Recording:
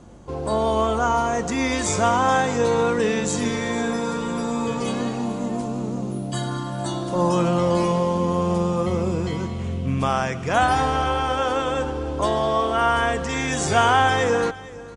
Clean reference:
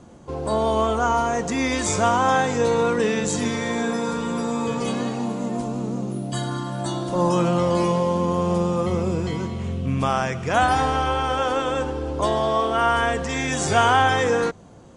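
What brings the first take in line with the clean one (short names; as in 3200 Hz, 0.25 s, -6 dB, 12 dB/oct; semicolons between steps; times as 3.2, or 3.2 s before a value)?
de-hum 49.3 Hz, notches 3; inverse comb 0.458 s -18.5 dB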